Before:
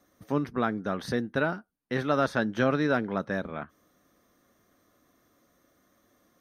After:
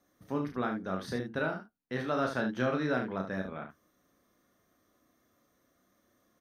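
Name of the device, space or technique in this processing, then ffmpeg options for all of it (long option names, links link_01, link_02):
slapback doubling: -filter_complex "[0:a]asplit=3[link_01][link_02][link_03];[link_02]adelay=32,volume=-5dB[link_04];[link_03]adelay=73,volume=-8dB[link_05];[link_01][link_04][link_05]amix=inputs=3:normalize=0,volume=-6.5dB"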